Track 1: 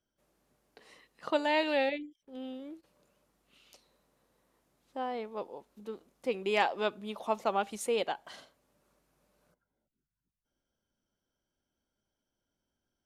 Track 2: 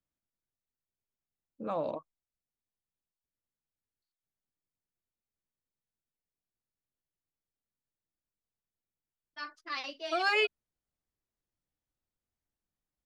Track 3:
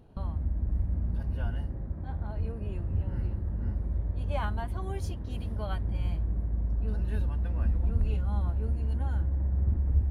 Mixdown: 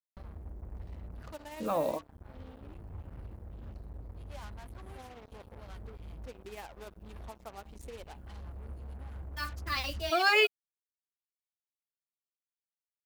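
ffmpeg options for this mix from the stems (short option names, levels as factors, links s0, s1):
-filter_complex "[0:a]aemphasis=mode=reproduction:type=75kf,acompressor=threshold=0.00708:ratio=1.5,tremolo=f=17:d=0.46,volume=0.355,asplit=2[s0][s1];[1:a]volume=1.41[s2];[2:a]asoftclip=type=tanh:threshold=0.1,volume=0.2[s3];[s1]apad=whole_len=445526[s4];[s3][s4]sidechaincompress=threshold=0.00251:ratio=12:attack=16:release=627[s5];[s0][s2][s5]amix=inputs=3:normalize=0,acrusher=bits=7:mix=0:aa=0.5,highshelf=f=8200:g=8"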